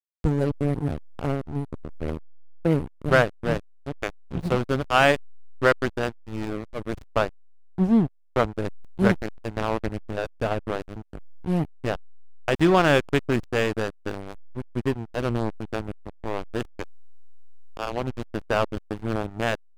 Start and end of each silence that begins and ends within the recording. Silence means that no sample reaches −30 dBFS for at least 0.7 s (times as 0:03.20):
0:16.84–0:17.77